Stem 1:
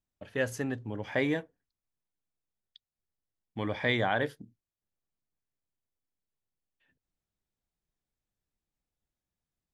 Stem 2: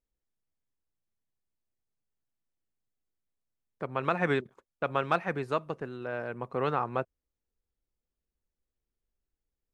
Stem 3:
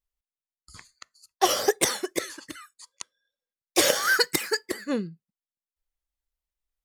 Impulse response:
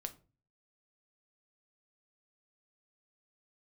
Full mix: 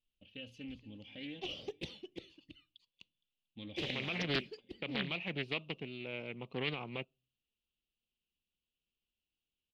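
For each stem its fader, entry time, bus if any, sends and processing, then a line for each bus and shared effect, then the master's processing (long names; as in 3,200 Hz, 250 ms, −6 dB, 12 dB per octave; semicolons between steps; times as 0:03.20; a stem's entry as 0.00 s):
−12.0 dB, 0.00 s, no send, echo send −17 dB, comb filter 3.8 ms, depth 54%; brickwall limiter −21 dBFS, peak gain reduction 6.5 dB
+1.0 dB, 0.00 s, send −21.5 dB, no echo send, high-pass filter 290 Hz 6 dB per octave; brickwall limiter −20.5 dBFS, peak gain reduction 8 dB
−18.0 dB, 0.00 s, send −8.5 dB, no echo send, spectral tilt −3 dB per octave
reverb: on, RT60 0.35 s, pre-delay 6 ms
echo: repeating echo 232 ms, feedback 33%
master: drawn EQ curve 200 Hz 0 dB, 1,700 Hz −22 dB, 2,800 Hz +13 dB, 7,600 Hz −20 dB; highs frequency-modulated by the lows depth 0.4 ms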